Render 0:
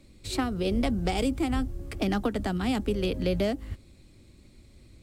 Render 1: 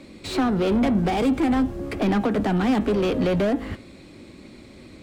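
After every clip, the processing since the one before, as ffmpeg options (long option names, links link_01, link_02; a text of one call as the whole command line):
ffmpeg -i in.wav -filter_complex "[0:a]asplit=2[link_01][link_02];[link_02]highpass=frequency=720:poles=1,volume=26dB,asoftclip=type=tanh:threshold=-16dB[link_03];[link_01][link_03]amix=inputs=2:normalize=0,lowpass=frequency=1500:poles=1,volume=-6dB,equalizer=frequency=230:width_type=o:width=1.3:gain=5,bandreject=frequency=115:width_type=h:width=4,bandreject=frequency=230:width_type=h:width=4,bandreject=frequency=345:width_type=h:width=4,bandreject=frequency=460:width_type=h:width=4,bandreject=frequency=575:width_type=h:width=4,bandreject=frequency=690:width_type=h:width=4,bandreject=frequency=805:width_type=h:width=4,bandreject=frequency=920:width_type=h:width=4,bandreject=frequency=1035:width_type=h:width=4,bandreject=frequency=1150:width_type=h:width=4,bandreject=frequency=1265:width_type=h:width=4,bandreject=frequency=1380:width_type=h:width=4,bandreject=frequency=1495:width_type=h:width=4,bandreject=frequency=1610:width_type=h:width=4,bandreject=frequency=1725:width_type=h:width=4,bandreject=frequency=1840:width_type=h:width=4,bandreject=frequency=1955:width_type=h:width=4,bandreject=frequency=2070:width_type=h:width=4,bandreject=frequency=2185:width_type=h:width=4,bandreject=frequency=2300:width_type=h:width=4,bandreject=frequency=2415:width_type=h:width=4,bandreject=frequency=2530:width_type=h:width=4,bandreject=frequency=2645:width_type=h:width=4,bandreject=frequency=2760:width_type=h:width=4,bandreject=frequency=2875:width_type=h:width=4,bandreject=frequency=2990:width_type=h:width=4,bandreject=frequency=3105:width_type=h:width=4,bandreject=frequency=3220:width_type=h:width=4,bandreject=frequency=3335:width_type=h:width=4,bandreject=frequency=3450:width_type=h:width=4,bandreject=frequency=3565:width_type=h:width=4,bandreject=frequency=3680:width_type=h:width=4,bandreject=frequency=3795:width_type=h:width=4,bandreject=frequency=3910:width_type=h:width=4,bandreject=frequency=4025:width_type=h:width=4,bandreject=frequency=4140:width_type=h:width=4" out.wav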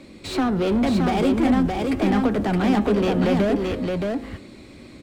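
ffmpeg -i in.wav -af "aecho=1:1:619:0.668" out.wav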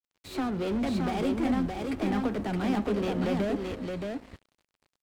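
ffmpeg -i in.wav -af "aeval=exprs='sgn(val(0))*max(abs(val(0))-0.0158,0)':channel_layout=same,volume=-7.5dB" out.wav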